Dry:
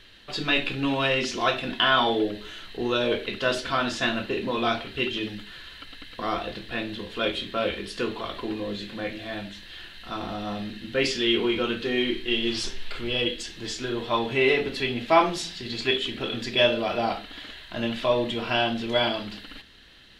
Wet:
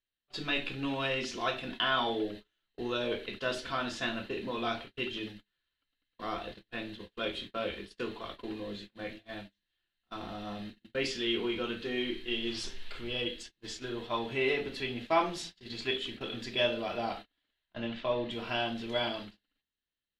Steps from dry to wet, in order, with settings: 17.66–18.31 LPF 3900 Hz 12 dB/oct; gate -34 dBFS, range -33 dB; gain -8.5 dB

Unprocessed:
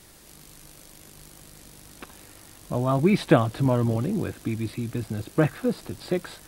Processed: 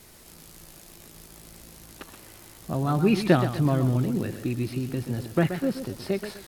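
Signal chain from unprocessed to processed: dynamic EQ 680 Hz, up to -5 dB, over -34 dBFS, Q 0.85; pitch shift +1.5 st; warbling echo 0.126 s, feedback 33%, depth 112 cents, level -10 dB

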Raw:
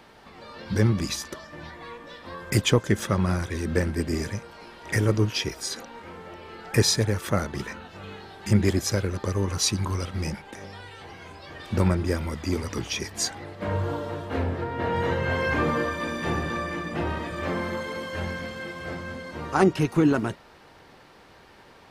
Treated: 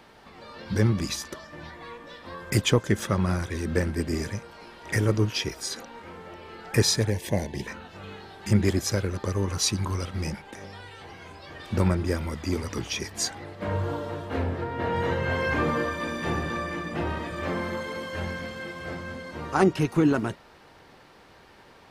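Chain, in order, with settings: 7.1–7.67 Butterworth band-stop 1300 Hz, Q 1.7; gain -1 dB

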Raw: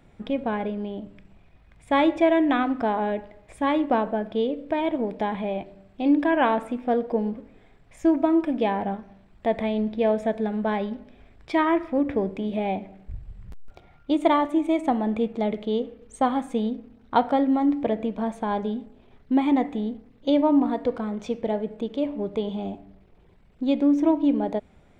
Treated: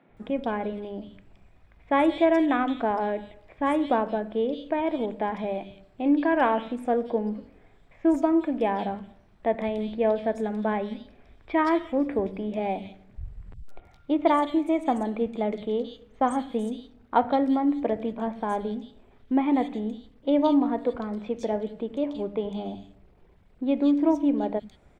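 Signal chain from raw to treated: three bands offset in time mids, lows, highs 90/170 ms, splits 170/3200 Hz; gain -1 dB

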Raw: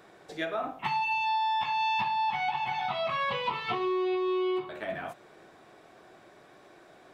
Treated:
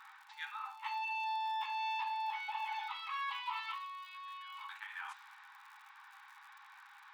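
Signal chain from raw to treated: low-pass opened by the level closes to 2700 Hz, open at -28.5 dBFS; reverse; compressor 5:1, threshold -41 dBFS, peak gain reduction 14 dB; reverse; crackle 110/s -53 dBFS; brick-wall FIR high-pass 790 Hz; on a send: reverse echo 0.546 s -18.5 dB; on the sum: gain +3.5 dB

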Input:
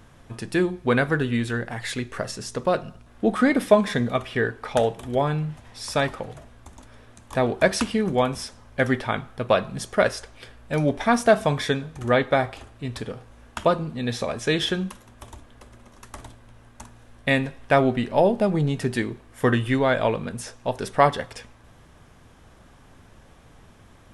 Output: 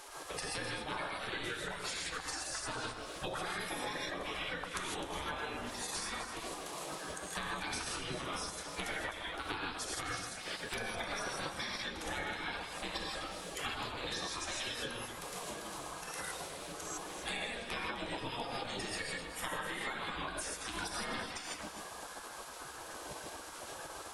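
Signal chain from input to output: bin magnitudes rounded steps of 30 dB; non-linear reverb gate 0.18 s rising, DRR -4 dB; spectral gate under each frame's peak -15 dB weak; compressor 12:1, threshold -43 dBFS, peak gain reduction 22.5 dB; echo with dull and thin repeats by turns 0.128 s, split 1400 Hz, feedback 52%, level -6.5 dB; three-band squash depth 40%; gain +6 dB

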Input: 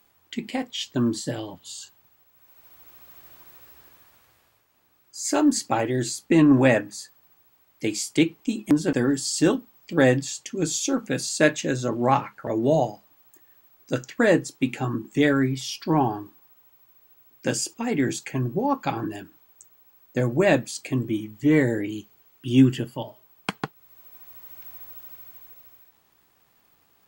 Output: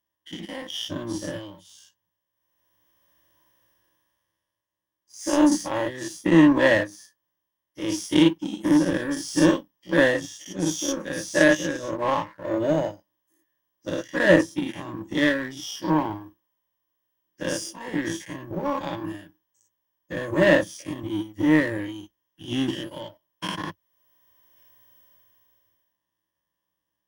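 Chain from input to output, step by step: spectral dilation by 0.12 s; ripple EQ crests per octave 1.2, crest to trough 15 dB; power-law curve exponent 1.4; gain -4 dB

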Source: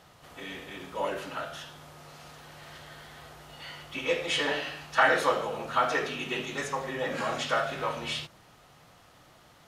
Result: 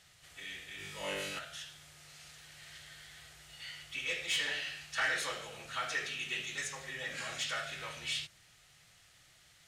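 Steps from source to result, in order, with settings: graphic EQ 250/500/1000/2000/4000/8000 Hz -11/-6/-11/+6/+3/+9 dB; soft clip -18.5 dBFS, distortion -17 dB; 0.76–1.39 flutter echo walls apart 3.5 m, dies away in 0.84 s; gain -6.5 dB

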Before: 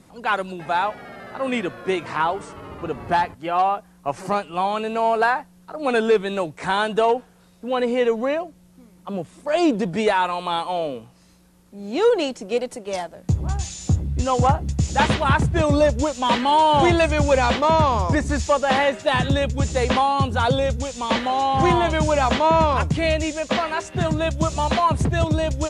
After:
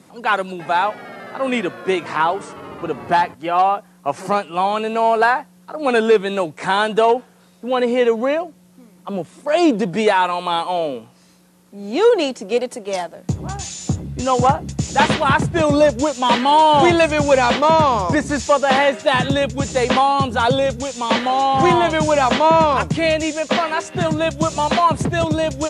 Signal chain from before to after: HPF 150 Hz 12 dB/oct; gain +4 dB

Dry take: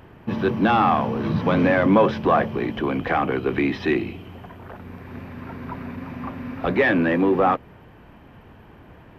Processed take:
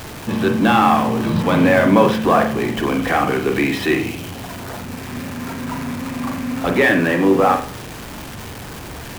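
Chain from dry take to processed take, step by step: zero-crossing step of -32.5 dBFS; high shelf 3200 Hz +8.5 dB; on a send: reverb, pre-delay 41 ms, DRR 5 dB; on the sum: gain +1.5 dB

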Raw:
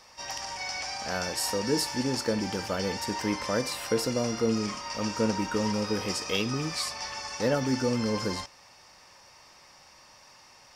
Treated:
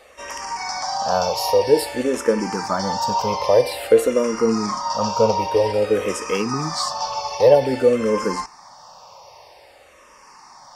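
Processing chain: band shelf 710 Hz +9 dB; endless phaser -0.51 Hz; gain +7 dB

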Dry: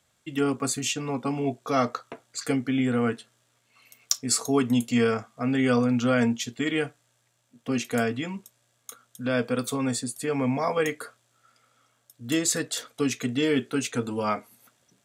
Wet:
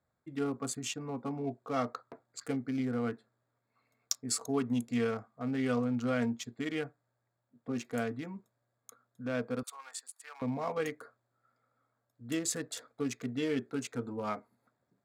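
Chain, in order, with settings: Wiener smoothing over 15 samples; 9.63–10.42 HPF 930 Hz 24 dB/oct; gain -8.5 dB

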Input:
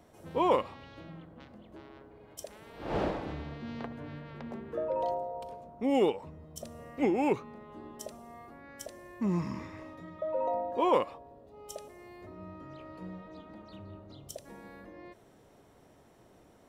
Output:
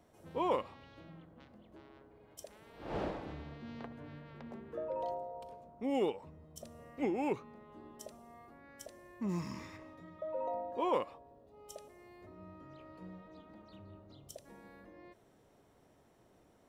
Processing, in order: 9.28–9.76 high shelf 4100 Hz -> 2300 Hz +12 dB; gain -6.5 dB

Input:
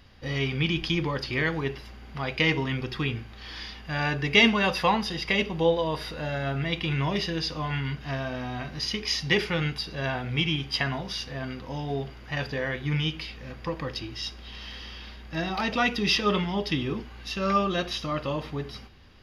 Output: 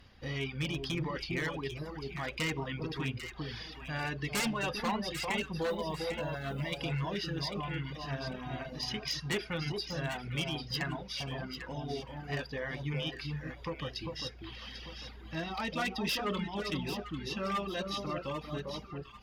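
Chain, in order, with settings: 5.69–6.8 modulation noise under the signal 32 dB; in parallel at -1.5 dB: compressor 10:1, threshold -37 dBFS, peak gain reduction 22.5 dB; on the sum: wavefolder -17 dBFS; on a send: echo with dull and thin repeats by turns 0.398 s, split 1100 Hz, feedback 53%, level -3 dB; on the sum: one-sided clip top -19 dBFS; reverb removal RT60 0.88 s; gain -8.5 dB

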